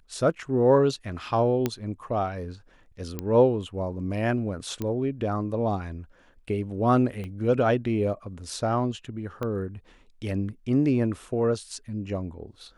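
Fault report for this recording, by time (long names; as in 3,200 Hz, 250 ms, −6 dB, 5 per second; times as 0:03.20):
0:01.66: click −11 dBFS
0:03.19: click −16 dBFS
0:04.82: click −17 dBFS
0:07.24: click −25 dBFS
0:09.43: click −19 dBFS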